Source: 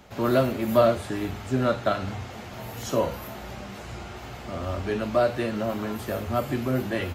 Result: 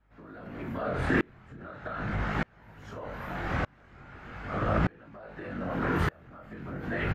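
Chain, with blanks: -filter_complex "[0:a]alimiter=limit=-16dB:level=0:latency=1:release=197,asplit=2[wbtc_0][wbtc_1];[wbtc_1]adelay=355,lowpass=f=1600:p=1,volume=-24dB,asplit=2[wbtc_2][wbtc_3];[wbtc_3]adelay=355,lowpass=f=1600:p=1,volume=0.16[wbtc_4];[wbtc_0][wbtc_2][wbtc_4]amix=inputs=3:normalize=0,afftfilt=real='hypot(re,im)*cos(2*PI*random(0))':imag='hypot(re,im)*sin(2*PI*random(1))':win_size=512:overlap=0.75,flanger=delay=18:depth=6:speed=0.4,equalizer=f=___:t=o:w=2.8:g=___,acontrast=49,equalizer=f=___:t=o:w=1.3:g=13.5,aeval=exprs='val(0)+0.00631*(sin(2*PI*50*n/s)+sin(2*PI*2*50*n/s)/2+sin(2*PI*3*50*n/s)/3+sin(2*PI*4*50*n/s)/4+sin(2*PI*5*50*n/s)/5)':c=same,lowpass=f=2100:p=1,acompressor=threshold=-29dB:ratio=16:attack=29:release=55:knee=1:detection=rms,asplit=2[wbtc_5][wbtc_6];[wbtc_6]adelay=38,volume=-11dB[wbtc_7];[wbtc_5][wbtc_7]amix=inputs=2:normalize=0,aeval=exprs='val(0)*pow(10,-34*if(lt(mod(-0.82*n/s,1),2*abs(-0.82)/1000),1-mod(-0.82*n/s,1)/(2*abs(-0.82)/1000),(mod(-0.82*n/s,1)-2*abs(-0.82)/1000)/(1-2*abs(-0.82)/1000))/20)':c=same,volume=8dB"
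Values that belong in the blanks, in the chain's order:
120, 6.5, 1600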